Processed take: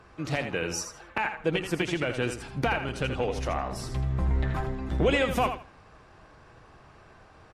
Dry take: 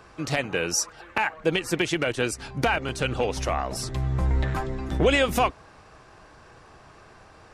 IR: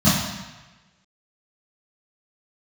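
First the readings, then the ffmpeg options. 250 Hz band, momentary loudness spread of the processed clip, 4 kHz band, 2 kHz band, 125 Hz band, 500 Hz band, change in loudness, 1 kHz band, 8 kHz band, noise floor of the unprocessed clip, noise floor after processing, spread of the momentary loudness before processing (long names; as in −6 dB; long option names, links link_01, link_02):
−2.0 dB, 7 LU, −5.5 dB, −4.0 dB, −2.0 dB, −3.0 dB, −3.5 dB, −3.5 dB, −8.5 dB, −51 dBFS, −54 dBFS, 7 LU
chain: -filter_complex "[0:a]bass=frequency=250:gain=3,treble=frequency=4000:gain=-6,asplit=2[link_01][link_02];[link_02]aecho=0:1:81|162|243:0.376|0.0789|0.0166[link_03];[link_01][link_03]amix=inputs=2:normalize=0,volume=-4dB" -ar 48000 -c:a aac -b:a 64k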